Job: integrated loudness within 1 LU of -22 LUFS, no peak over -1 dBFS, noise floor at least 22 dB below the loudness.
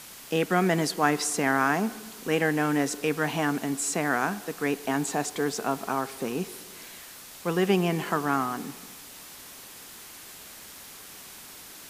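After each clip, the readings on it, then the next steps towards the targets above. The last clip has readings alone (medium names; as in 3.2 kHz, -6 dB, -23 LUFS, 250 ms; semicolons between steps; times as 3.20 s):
noise floor -46 dBFS; noise floor target -49 dBFS; loudness -27.0 LUFS; peak level -7.0 dBFS; loudness target -22.0 LUFS
-> noise reduction 6 dB, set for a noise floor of -46 dBFS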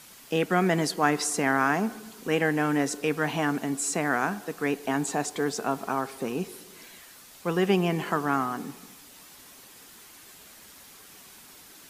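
noise floor -50 dBFS; loudness -27.0 LUFS; peak level -7.5 dBFS; loudness target -22.0 LUFS
-> trim +5 dB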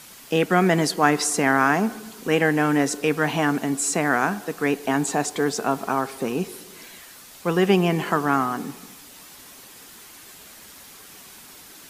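loudness -22.0 LUFS; peak level -2.5 dBFS; noise floor -45 dBFS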